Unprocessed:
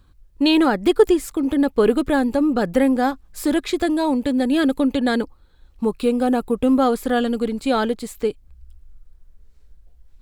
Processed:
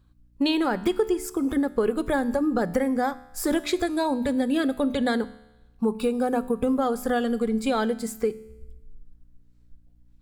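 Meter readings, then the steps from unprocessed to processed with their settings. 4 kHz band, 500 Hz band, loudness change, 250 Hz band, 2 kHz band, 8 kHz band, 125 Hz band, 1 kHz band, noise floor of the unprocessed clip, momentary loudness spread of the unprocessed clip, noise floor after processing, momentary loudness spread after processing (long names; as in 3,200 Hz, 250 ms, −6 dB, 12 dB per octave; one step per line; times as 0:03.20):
−6.0 dB, −5.5 dB, −5.5 dB, −6.0 dB, −4.5 dB, −1.5 dB, −3.5 dB, −4.5 dB, −53 dBFS, 8 LU, −57 dBFS, 5 LU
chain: noise reduction from a noise print of the clip's start 10 dB
mains-hum notches 50/100/150/200/250/300 Hz
downward compressor, threshold −21 dBFS, peak gain reduction 13 dB
tuned comb filter 73 Hz, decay 0.99 s, harmonics all, mix 50%
mains hum 60 Hz, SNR 35 dB
level +6 dB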